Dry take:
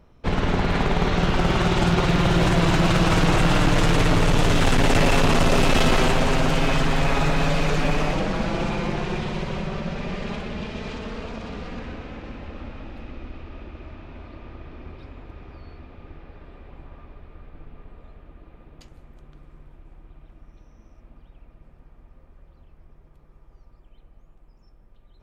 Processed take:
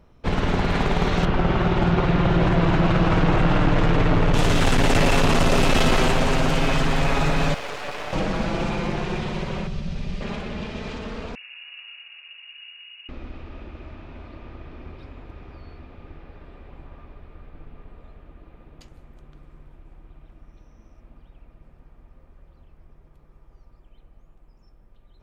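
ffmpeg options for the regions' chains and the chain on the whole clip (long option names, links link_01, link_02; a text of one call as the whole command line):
ffmpeg -i in.wav -filter_complex "[0:a]asettb=1/sr,asplit=3[link_01][link_02][link_03];[link_01]atrim=end=1.254[link_04];[link_02]atrim=start=1.25:end=4.34,asetpts=PTS-STARTPTS,afade=type=in:duration=0.004:curve=qsin,afade=type=out:start_time=3.086:duration=0.004:curve=qsin,lowpass=frequency=2900:poles=1,aemphasis=mode=reproduction:type=50fm[link_05];[link_03]atrim=start=4.336[link_06];[link_04][link_05]acrossfade=duration=0.004:curve1=hsin:curve2=qsin[link_07];[link_07][link_06]acrossfade=duration=0.004:curve1=qsin:curve2=hsin,asettb=1/sr,asplit=3[link_08][link_09][link_10];[link_08]atrim=end=7.544[link_11];[link_09]atrim=start=7.54:end=8.13,asetpts=PTS-STARTPTS,afade=type=in:duration=0.004:curve=qsin,afade=type=out:start_time=0.586:duration=0.004:curve=qsin,highpass=frequency=450:width=0.5412,highpass=frequency=450:width=1.3066,highshelf=frequency=4300:gain=-8,aeval=exprs='max(val(0),0)':channel_layout=same[link_12];[link_10]atrim=start=8.126[link_13];[link_11][link_12]acrossfade=duration=0.004:curve1=hsin:curve2=qsin[link_14];[link_14][link_13]acrossfade=duration=0.004:curve1=qsin:curve2=hsin,asettb=1/sr,asplit=3[link_15][link_16][link_17];[link_15]atrim=end=9.674[link_18];[link_16]atrim=start=9.67:end=10.21,asetpts=PTS-STARTPTS,afade=type=in:duration=0.004:curve=qsin,afade=type=out:start_time=0.536:duration=0.004:curve=qsin,bandreject=frequency=7100:width=26,acrossover=split=150|3000[link_19][link_20][link_21];[link_20]acompressor=threshold=-51dB:ratio=2:attack=3.2:release=140:knee=2.83:detection=peak[link_22];[link_19][link_22][link_21]amix=inputs=3:normalize=0,lowshelf=frequency=450:gain=5[link_23];[link_17]atrim=start=10.206[link_24];[link_18][link_23]acrossfade=duration=0.004:curve1=hsin:curve2=qsin[link_25];[link_25][link_24]acrossfade=duration=0.004:curve1=qsin:curve2=hsin,asettb=1/sr,asplit=3[link_26][link_27][link_28];[link_26]atrim=end=11.354[link_29];[link_27]atrim=start=11.35:end=13.09,asetpts=PTS-STARTPTS,afade=type=in:duration=0.004:curve=qsin,afade=type=out:start_time=1.736:duration=0.004:curve=qsin,lowpass=frequency=2500:width_type=q:width=0.5098,lowpass=frequency=2500:width_type=q:width=0.6013,lowpass=frequency=2500:width_type=q:width=0.9,lowpass=frequency=2500:width_type=q:width=2.563,afreqshift=-2900,aderivative[link_30];[link_28]atrim=start=13.086[link_31];[link_29][link_30]acrossfade=duration=0.004:curve1=hsin:curve2=qsin[link_32];[link_32][link_31]acrossfade=duration=0.004:curve1=qsin:curve2=hsin" out.wav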